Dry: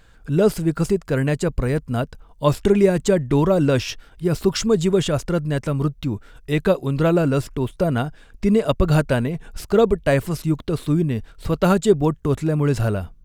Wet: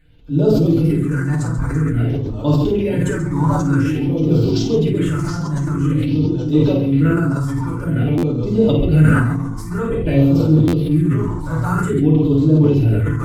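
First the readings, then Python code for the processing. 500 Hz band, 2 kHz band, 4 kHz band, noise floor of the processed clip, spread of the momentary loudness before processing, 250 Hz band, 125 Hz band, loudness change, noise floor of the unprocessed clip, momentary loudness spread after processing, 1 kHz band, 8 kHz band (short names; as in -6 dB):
-1.5 dB, +1.5 dB, -2.5 dB, -25 dBFS, 9 LU, +5.5 dB, +7.0 dB, +4.0 dB, -50 dBFS, 8 LU, 0.0 dB, n/a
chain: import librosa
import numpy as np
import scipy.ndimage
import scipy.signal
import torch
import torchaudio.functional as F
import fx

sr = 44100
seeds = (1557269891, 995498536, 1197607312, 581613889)

p1 = fx.echo_pitch(x, sr, ms=160, semitones=-2, count=3, db_per_echo=-6.0)
p2 = fx.high_shelf(p1, sr, hz=9700.0, db=-7.0)
p3 = p2 + fx.echo_multitap(p2, sr, ms=(51, 134), db=(-4.5, -7.5), dry=0)
p4 = fx.rev_fdn(p3, sr, rt60_s=0.34, lf_ratio=1.35, hf_ratio=0.65, size_ms=20.0, drr_db=-4.5)
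p5 = fx.phaser_stages(p4, sr, stages=4, low_hz=430.0, high_hz=1900.0, hz=0.5, feedback_pct=35)
p6 = fx.buffer_glitch(p5, sr, at_s=(8.17, 10.67), block=512, repeats=4)
p7 = fx.sustainer(p6, sr, db_per_s=32.0)
y = p7 * 10.0 ** (-7.5 / 20.0)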